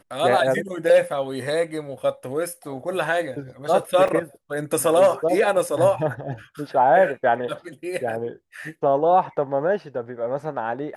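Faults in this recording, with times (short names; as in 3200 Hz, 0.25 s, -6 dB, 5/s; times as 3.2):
4.08 gap 4.3 ms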